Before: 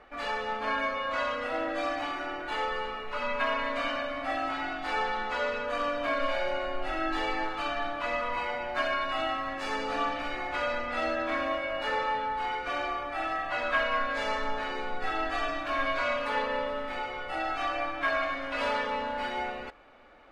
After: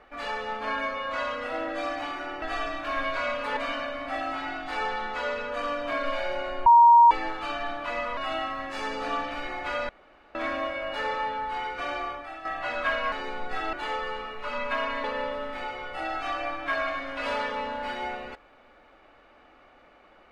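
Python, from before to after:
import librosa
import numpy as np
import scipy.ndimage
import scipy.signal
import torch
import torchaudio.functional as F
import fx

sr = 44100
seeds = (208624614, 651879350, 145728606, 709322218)

y = fx.edit(x, sr, fx.swap(start_s=2.42, length_s=1.31, other_s=15.24, other_length_s=1.15),
    fx.bleep(start_s=6.82, length_s=0.45, hz=941.0, db=-11.0),
    fx.cut(start_s=8.33, length_s=0.72),
    fx.room_tone_fill(start_s=10.77, length_s=0.46),
    fx.fade_out_to(start_s=12.99, length_s=0.34, curve='qua', floor_db=-10.0),
    fx.cut(start_s=14.0, length_s=0.63), tone=tone)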